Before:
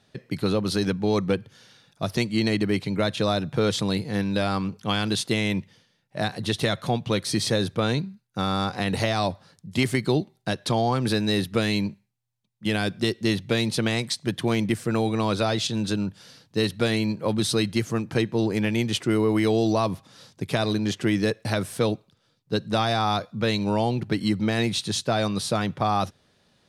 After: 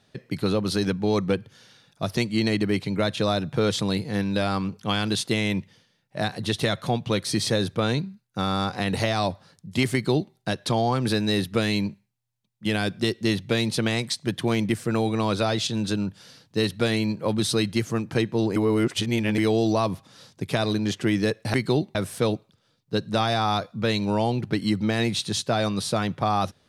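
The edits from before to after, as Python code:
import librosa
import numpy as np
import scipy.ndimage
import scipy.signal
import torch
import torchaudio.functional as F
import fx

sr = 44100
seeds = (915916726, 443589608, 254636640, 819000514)

y = fx.edit(x, sr, fx.duplicate(start_s=9.93, length_s=0.41, to_s=21.54),
    fx.reverse_span(start_s=18.56, length_s=0.82), tone=tone)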